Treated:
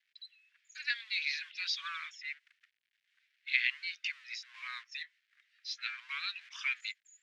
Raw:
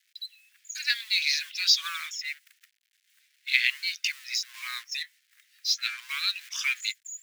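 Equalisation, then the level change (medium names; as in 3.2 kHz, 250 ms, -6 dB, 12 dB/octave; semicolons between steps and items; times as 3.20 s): low-pass 2.8 kHz 12 dB/octave; -4.5 dB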